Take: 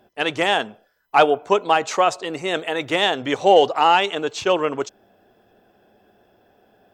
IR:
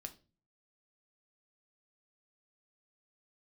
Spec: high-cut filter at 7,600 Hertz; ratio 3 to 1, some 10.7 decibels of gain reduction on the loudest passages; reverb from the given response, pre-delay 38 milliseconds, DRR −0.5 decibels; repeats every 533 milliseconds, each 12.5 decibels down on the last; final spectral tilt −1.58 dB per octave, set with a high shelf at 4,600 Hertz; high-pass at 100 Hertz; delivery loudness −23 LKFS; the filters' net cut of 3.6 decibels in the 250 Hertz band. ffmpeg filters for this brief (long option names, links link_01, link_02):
-filter_complex "[0:a]highpass=100,lowpass=7600,equalizer=frequency=250:width_type=o:gain=-5.5,highshelf=frequency=4600:gain=-6.5,acompressor=threshold=-24dB:ratio=3,aecho=1:1:533|1066|1599:0.237|0.0569|0.0137,asplit=2[link_01][link_02];[1:a]atrim=start_sample=2205,adelay=38[link_03];[link_02][link_03]afir=irnorm=-1:irlink=0,volume=5dB[link_04];[link_01][link_04]amix=inputs=2:normalize=0,volume=1.5dB"